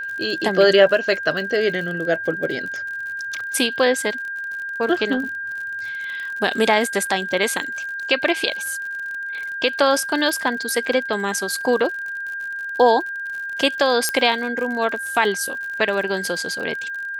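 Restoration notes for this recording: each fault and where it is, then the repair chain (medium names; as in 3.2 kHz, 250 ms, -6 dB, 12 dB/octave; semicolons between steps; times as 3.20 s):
crackle 55 per s -29 dBFS
whine 1.6 kHz -26 dBFS
14.09 s: pop -5 dBFS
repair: de-click; band-stop 1.6 kHz, Q 30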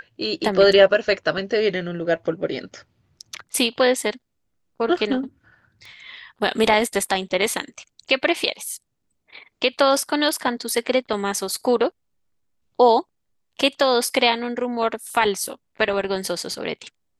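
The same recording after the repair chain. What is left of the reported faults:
14.09 s: pop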